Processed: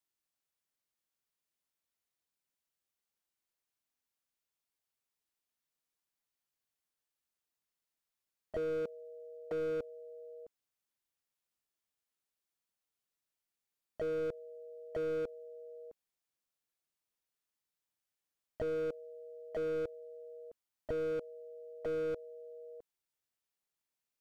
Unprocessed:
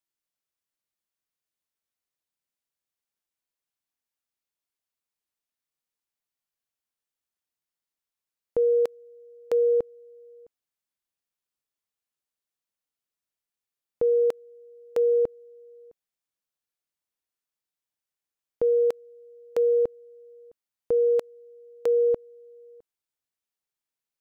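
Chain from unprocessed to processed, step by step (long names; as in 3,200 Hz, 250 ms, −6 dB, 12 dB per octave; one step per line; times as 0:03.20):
pitch-shifted copies added +5 semitones −10 dB
slew-rate limiting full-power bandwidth 11 Hz
level −1 dB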